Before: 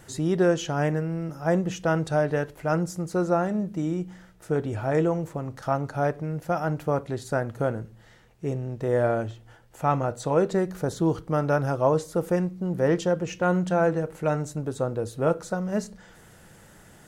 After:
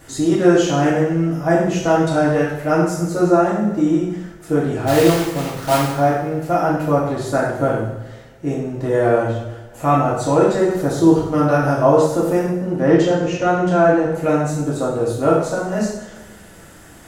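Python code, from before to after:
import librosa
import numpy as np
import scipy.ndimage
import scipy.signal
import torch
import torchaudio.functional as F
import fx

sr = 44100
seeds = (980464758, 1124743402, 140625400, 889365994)

y = fx.block_float(x, sr, bits=3, at=(4.86, 5.88), fade=0.02)
y = fx.air_absorb(y, sr, metres=54.0, at=(12.44, 14.15))
y = fx.rev_double_slope(y, sr, seeds[0], early_s=0.76, late_s=2.2, knee_db=-18, drr_db=-6.5)
y = F.gain(torch.from_numpy(y), 2.0).numpy()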